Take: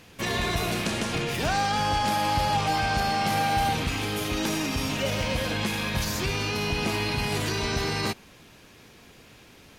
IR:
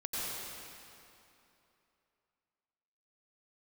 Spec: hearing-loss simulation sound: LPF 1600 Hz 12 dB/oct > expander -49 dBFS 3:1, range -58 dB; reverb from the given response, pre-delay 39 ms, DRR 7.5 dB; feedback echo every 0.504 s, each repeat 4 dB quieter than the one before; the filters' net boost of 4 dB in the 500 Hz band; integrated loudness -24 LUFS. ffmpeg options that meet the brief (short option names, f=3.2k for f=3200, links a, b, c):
-filter_complex "[0:a]equalizer=f=500:t=o:g=5,aecho=1:1:504|1008|1512|2016|2520|3024|3528|4032|4536:0.631|0.398|0.25|0.158|0.0994|0.0626|0.0394|0.0249|0.0157,asplit=2[a][b];[1:a]atrim=start_sample=2205,adelay=39[c];[b][c]afir=irnorm=-1:irlink=0,volume=-12dB[d];[a][d]amix=inputs=2:normalize=0,lowpass=1.6k,agate=range=-58dB:threshold=-49dB:ratio=3"